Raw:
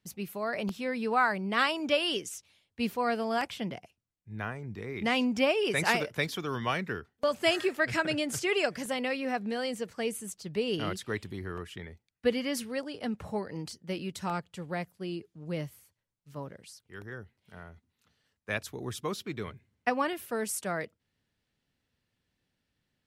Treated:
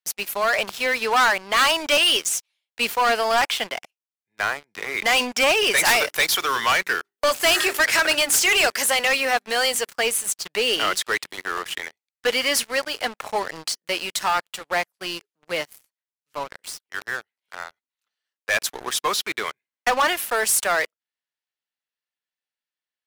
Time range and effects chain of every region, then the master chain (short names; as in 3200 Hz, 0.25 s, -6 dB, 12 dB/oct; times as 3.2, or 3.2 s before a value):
5.78–9.91 high shelf 8100 Hz +10 dB + notches 50/100/150/200/250/300/350/400 Hz
whole clip: HPF 820 Hz 12 dB/oct; sample leveller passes 5